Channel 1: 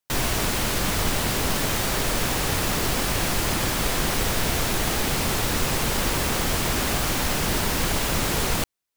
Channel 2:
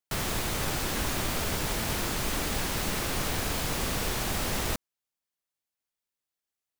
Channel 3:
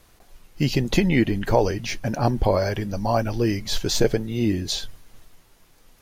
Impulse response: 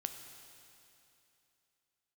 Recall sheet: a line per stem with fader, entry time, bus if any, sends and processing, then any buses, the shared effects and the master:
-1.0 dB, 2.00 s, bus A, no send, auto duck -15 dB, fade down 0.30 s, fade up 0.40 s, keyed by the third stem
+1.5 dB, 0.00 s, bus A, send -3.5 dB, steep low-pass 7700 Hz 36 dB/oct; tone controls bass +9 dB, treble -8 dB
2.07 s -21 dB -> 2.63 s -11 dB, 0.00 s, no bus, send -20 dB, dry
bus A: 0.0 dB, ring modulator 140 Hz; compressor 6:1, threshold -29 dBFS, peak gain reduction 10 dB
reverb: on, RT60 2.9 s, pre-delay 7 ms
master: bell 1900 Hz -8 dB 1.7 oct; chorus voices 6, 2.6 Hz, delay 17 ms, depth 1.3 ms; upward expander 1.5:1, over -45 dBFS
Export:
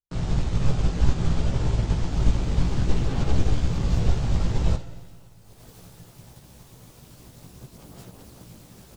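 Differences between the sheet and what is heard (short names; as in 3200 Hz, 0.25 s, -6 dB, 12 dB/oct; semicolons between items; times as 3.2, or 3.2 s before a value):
stem 2 +1.5 dB -> +10.0 dB; stem 3 -21.0 dB -> -28.5 dB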